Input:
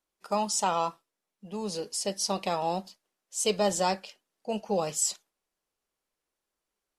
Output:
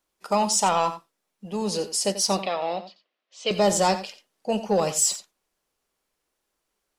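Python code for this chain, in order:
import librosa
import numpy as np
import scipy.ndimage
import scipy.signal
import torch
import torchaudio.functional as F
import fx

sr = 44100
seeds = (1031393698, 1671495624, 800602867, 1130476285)

p1 = 10.0 ** (-18.0 / 20.0) * np.tanh(x / 10.0 ** (-18.0 / 20.0))
p2 = fx.cabinet(p1, sr, low_hz=370.0, low_slope=12, high_hz=3900.0, hz=(400.0, 880.0, 1500.0), db=(-6, -9, -5), at=(2.42, 3.51))
p3 = p2 + fx.echo_single(p2, sr, ms=88, db=-13.0, dry=0)
y = p3 * librosa.db_to_amplitude(7.0)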